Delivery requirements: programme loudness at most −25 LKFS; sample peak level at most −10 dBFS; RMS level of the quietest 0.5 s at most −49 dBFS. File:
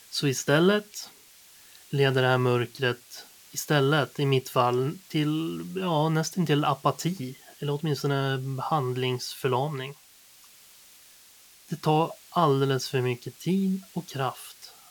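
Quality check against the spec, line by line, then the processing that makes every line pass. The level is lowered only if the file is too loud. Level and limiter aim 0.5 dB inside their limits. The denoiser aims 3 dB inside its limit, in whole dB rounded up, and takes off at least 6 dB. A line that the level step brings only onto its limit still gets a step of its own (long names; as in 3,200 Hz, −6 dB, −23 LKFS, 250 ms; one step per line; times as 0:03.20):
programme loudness −26.5 LKFS: in spec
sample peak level −7.5 dBFS: out of spec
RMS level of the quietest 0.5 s −55 dBFS: in spec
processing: brickwall limiter −10.5 dBFS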